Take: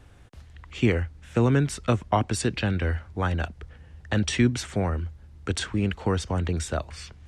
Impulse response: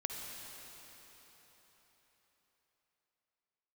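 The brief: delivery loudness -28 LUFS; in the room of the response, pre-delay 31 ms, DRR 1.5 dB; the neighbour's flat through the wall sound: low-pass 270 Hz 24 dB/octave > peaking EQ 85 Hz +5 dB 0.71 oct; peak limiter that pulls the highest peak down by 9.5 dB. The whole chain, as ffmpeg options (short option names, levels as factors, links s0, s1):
-filter_complex "[0:a]alimiter=limit=0.133:level=0:latency=1,asplit=2[s0][s1];[1:a]atrim=start_sample=2205,adelay=31[s2];[s1][s2]afir=irnorm=-1:irlink=0,volume=0.708[s3];[s0][s3]amix=inputs=2:normalize=0,lowpass=f=270:w=0.5412,lowpass=f=270:w=1.3066,equalizer=f=85:t=o:w=0.71:g=5,volume=0.944"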